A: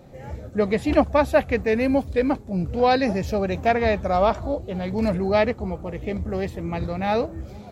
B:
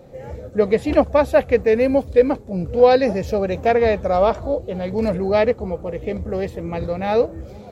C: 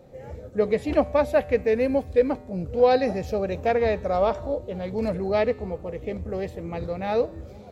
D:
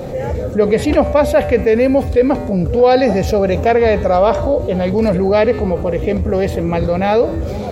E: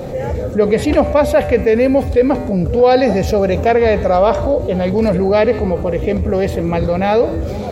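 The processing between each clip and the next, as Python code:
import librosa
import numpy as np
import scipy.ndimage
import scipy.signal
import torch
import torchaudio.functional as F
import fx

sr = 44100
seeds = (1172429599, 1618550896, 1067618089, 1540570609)

y1 = fx.peak_eq(x, sr, hz=490.0, db=9.0, octaves=0.47)
y2 = fx.comb_fb(y1, sr, f0_hz=84.0, decay_s=1.1, harmonics='odd', damping=0.0, mix_pct=50)
y3 = fx.env_flatten(y2, sr, amount_pct=50)
y3 = F.gain(torch.from_numpy(y3), 6.0).numpy()
y4 = y3 + 10.0 ** (-20.5 / 20.0) * np.pad(y3, (int(154 * sr / 1000.0), 0))[:len(y3)]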